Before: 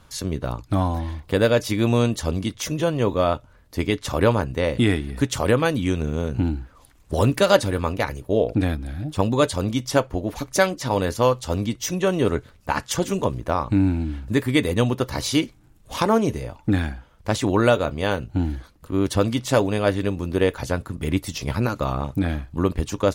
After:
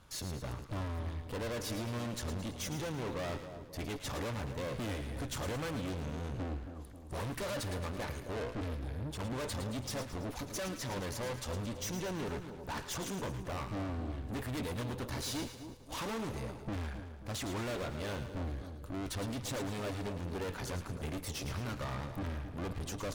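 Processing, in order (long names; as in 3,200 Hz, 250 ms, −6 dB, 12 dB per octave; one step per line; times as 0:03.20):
tube saturation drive 33 dB, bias 0.7
echo with a time of its own for lows and highs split 1,000 Hz, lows 268 ms, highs 110 ms, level −9 dB
level −3.5 dB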